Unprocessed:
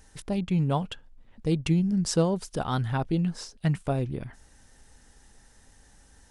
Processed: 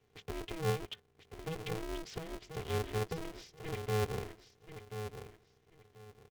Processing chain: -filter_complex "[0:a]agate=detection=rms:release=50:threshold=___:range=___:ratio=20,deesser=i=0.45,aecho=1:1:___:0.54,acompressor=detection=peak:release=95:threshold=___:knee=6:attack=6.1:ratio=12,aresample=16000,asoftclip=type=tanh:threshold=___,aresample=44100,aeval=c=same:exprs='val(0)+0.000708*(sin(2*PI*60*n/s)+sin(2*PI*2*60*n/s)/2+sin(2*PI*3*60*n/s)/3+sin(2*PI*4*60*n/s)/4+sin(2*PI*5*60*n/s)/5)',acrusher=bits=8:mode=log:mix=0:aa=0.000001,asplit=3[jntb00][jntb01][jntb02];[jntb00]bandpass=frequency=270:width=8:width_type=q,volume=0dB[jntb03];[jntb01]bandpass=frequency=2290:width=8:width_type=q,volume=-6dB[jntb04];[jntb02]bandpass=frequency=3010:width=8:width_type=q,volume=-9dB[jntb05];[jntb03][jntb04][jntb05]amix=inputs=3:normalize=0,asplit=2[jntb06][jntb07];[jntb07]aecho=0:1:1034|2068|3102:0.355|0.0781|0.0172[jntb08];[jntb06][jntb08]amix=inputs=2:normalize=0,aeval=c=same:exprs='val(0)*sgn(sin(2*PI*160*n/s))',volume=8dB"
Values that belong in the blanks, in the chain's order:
-47dB, -11dB, 3.6, -27dB, -30.5dB